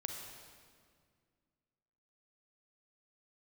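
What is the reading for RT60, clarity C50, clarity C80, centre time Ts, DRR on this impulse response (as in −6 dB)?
2.0 s, 3.0 dB, 4.5 dB, 66 ms, 2.0 dB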